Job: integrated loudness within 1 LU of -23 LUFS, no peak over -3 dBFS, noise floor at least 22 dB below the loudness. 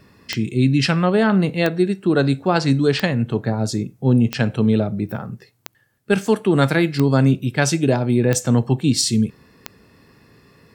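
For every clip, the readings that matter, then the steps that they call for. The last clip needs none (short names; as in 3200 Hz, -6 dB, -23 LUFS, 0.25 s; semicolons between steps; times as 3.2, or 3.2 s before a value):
clicks 8; loudness -19.0 LUFS; peak -1.5 dBFS; loudness target -23.0 LUFS
-> de-click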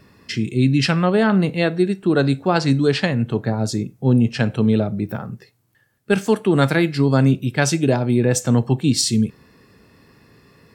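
clicks 0; loudness -19.0 LUFS; peak -1.5 dBFS; loudness target -23.0 LUFS
-> gain -4 dB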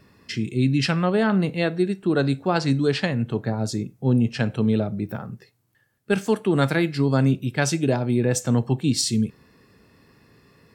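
loudness -23.0 LUFS; peak -5.5 dBFS; noise floor -64 dBFS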